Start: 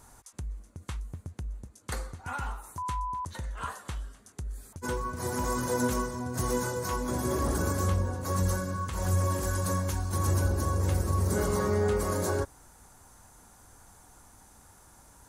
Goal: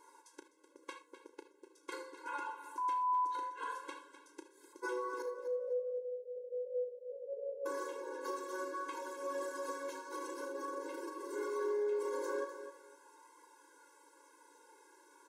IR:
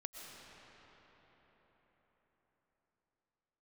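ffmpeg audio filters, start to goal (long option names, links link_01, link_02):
-filter_complex "[0:a]flanger=delay=0.9:depth=3.3:regen=63:speed=0.15:shape=triangular,alimiter=level_in=5.5dB:limit=-24dB:level=0:latency=1:release=28,volume=-5.5dB,asettb=1/sr,asplit=3[link_01][link_02][link_03];[link_01]atrim=end=5.224[link_04];[link_02]atrim=start=5.22:end=7.66,asetpts=PTS-STARTPTS,afade=type=in:duration=0.004:curve=qsin,afade=type=out:start_time=2.436:duration=0.004:curve=qsin,asuperpass=centerf=550:order=20:qfactor=2[link_05];[link_03]atrim=start=7.656[link_06];[link_04][link_05]acrossfade=duration=0.004:curve1=hsin:curve2=qsin[link_07];[link_07][link_06]acrossfade=duration=0.004:curve1=qsin:curve2=hsin,asplit=2[link_08][link_09];[link_09]adelay=34,volume=-10.5dB[link_10];[link_08][link_10]amix=inputs=2:normalize=0,aecho=1:1:253|506|759:0.224|0.0537|0.0129[link_11];[1:a]atrim=start_sample=2205,afade=type=out:start_time=0.2:duration=0.01,atrim=end_sample=9261,asetrate=79380,aresample=44100[link_12];[link_11][link_12]afir=irnorm=-1:irlink=0,acompressor=threshold=-46dB:ratio=3,aemphasis=mode=reproduction:type=50kf,afftfilt=real='re*eq(mod(floor(b*sr/1024/280),2),1)':imag='im*eq(mod(floor(b*sr/1024/280),2),1)':win_size=1024:overlap=0.75,volume=14.5dB"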